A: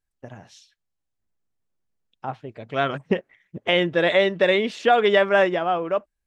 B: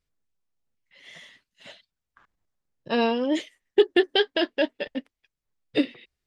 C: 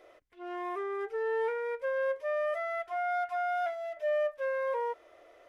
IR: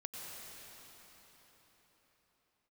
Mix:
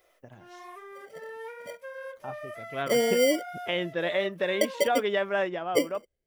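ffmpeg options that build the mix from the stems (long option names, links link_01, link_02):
-filter_complex "[0:a]volume=-9.5dB[link_01];[1:a]acompressor=threshold=-26dB:ratio=6,lowpass=frequency=540:width_type=q:width=4.9,acrusher=samples=17:mix=1:aa=0.000001,volume=-2dB,asplit=3[link_02][link_03][link_04];[link_02]atrim=end=3.43,asetpts=PTS-STARTPTS,afade=type=out:start_time=3.426:duration=0.004:curve=hsin[link_05];[link_03]atrim=start=3.43:end=4.61,asetpts=PTS-STARTPTS,volume=0[link_06];[link_04]atrim=start=4.61,asetpts=PTS-STARTPTS,afade=type=in:duration=0.004:curve=hsin[link_07];[link_05][link_06][link_07]concat=n=3:v=0:a=1[link_08];[2:a]aemphasis=mode=production:type=riaa,flanger=delay=5.5:depth=6.5:regen=-47:speed=1.1:shape=sinusoidal,volume=-4dB[link_09];[link_01][link_08][link_09]amix=inputs=3:normalize=0"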